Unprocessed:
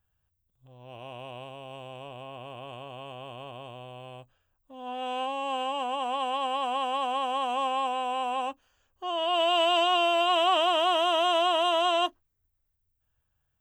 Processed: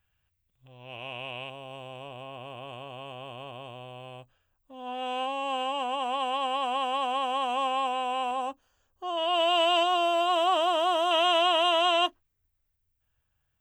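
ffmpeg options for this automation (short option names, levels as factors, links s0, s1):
-af "asetnsamples=n=441:p=0,asendcmd='1.5 equalizer g 2;8.31 equalizer g -5.5;9.17 equalizer g 0.5;9.83 equalizer g -5.5;11.11 equalizer g 4.5',equalizer=f=2400:t=o:w=1.1:g=11.5"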